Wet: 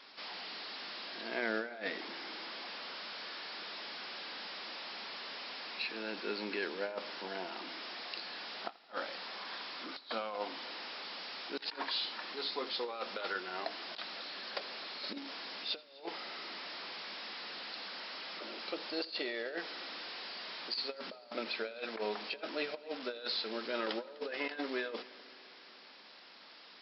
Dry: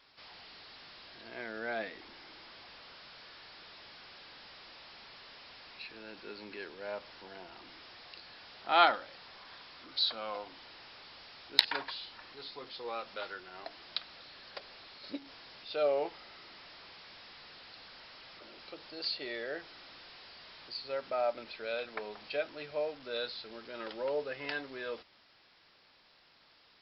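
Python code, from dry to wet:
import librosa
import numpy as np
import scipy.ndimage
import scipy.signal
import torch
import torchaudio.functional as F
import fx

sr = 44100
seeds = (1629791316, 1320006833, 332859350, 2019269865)

y = fx.over_compress(x, sr, threshold_db=-42.0, ratio=-0.5)
y = fx.brickwall_bandpass(y, sr, low_hz=170.0, high_hz=6200.0)
y = fx.echo_heads(y, sr, ms=84, heads='first and third', feedback_pct=69, wet_db=-23.0)
y = y * 10.0 ** (3.0 / 20.0)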